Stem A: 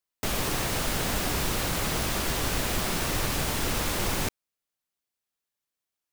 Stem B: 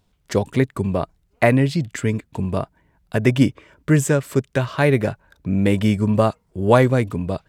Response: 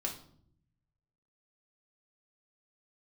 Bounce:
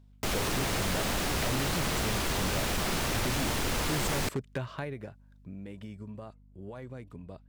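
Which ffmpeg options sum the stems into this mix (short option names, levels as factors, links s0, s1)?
-filter_complex "[0:a]volume=1[s0];[1:a]alimiter=limit=0.316:level=0:latency=1:release=76,acompressor=threshold=0.112:ratio=6,volume=0.398,afade=t=out:st=4.38:d=0.74:silence=0.251189[s1];[s0][s1]amix=inputs=2:normalize=0,highshelf=f=9700:g=-7.5,aeval=exprs='val(0)+0.00158*(sin(2*PI*50*n/s)+sin(2*PI*2*50*n/s)/2+sin(2*PI*3*50*n/s)/3+sin(2*PI*4*50*n/s)/4+sin(2*PI*5*50*n/s)/5)':c=same,aeval=exprs='0.0631*(abs(mod(val(0)/0.0631+3,4)-2)-1)':c=same"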